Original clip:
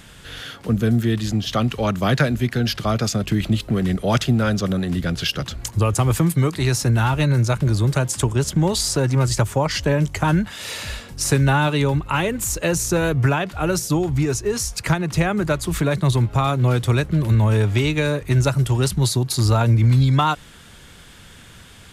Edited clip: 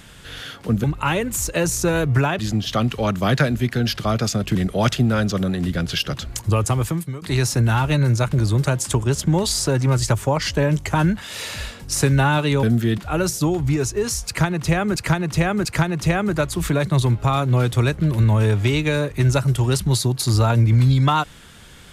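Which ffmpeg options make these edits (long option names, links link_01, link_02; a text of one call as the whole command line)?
ffmpeg -i in.wav -filter_complex "[0:a]asplit=9[link_01][link_02][link_03][link_04][link_05][link_06][link_07][link_08][link_09];[link_01]atrim=end=0.842[link_10];[link_02]atrim=start=11.918:end=13.472[link_11];[link_03]atrim=start=1.188:end=3.352[link_12];[link_04]atrim=start=3.838:end=6.51,asetpts=PTS-STARTPTS,afade=type=out:start_time=2.062:duration=0.61:silence=0.125893[link_13];[link_05]atrim=start=6.51:end=11.922,asetpts=PTS-STARTPTS,afade=type=in:duration=0.004:curve=hsin:silence=0.125893[link_14];[link_06]atrim=start=0.838:end=1.192[link_15];[link_07]atrim=start=13.468:end=15.452[link_16];[link_08]atrim=start=14.758:end=15.452[link_17];[link_09]atrim=start=14.758[link_18];[link_10][link_11]acrossfade=duration=0.004:curve1=hsin:curve2=hsin[link_19];[link_19][link_12]acrossfade=duration=0.004:curve1=hsin:curve2=hsin[link_20];[link_13][link_14]concat=n=2:v=0:a=1[link_21];[link_20][link_21]acrossfade=duration=0.004:curve1=hsin:curve2=hsin[link_22];[link_22][link_15]acrossfade=duration=0.004:curve1=hsin:curve2=hsin[link_23];[link_23][link_16]acrossfade=duration=0.004:curve1=hsin:curve2=hsin[link_24];[link_24][link_17]acrossfade=duration=0.004:curve1=hsin:curve2=hsin[link_25];[link_25][link_18]acrossfade=duration=0.004:curve1=hsin:curve2=hsin" out.wav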